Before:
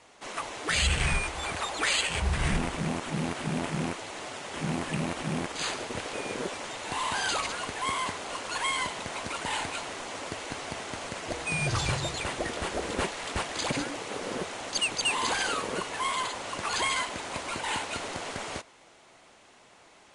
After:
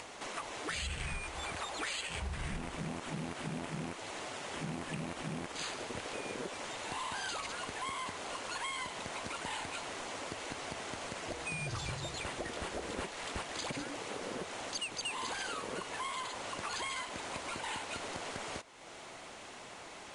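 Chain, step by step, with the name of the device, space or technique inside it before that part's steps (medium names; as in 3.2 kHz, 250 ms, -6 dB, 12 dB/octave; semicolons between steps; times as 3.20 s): upward and downward compression (upward compressor, threshold -32 dBFS; compression 4:1, threshold -31 dBFS, peak gain reduction 9 dB); trim -5 dB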